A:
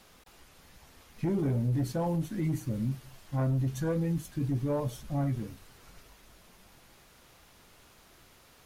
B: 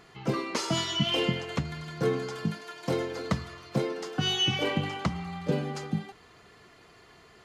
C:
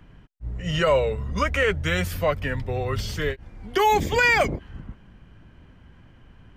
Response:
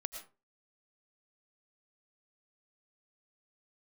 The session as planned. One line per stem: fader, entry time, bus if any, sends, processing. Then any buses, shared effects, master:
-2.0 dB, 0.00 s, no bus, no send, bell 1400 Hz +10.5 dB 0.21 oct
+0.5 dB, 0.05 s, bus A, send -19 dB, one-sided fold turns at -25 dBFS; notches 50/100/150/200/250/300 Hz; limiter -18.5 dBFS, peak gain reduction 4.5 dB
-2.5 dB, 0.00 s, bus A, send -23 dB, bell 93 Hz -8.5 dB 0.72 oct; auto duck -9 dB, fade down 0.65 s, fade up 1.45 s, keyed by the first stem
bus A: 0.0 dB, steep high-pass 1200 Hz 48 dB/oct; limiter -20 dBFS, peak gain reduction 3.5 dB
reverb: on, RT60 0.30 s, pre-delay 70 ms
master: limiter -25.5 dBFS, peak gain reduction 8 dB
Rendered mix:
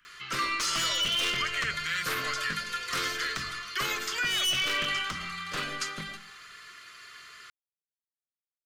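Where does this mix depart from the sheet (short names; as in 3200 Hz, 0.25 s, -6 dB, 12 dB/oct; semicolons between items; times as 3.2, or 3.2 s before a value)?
stem A: muted; stem B +0.5 dB -> +10.5 dB; master: missing limiter -25.5 dBFS, peak gain reduction 8 dB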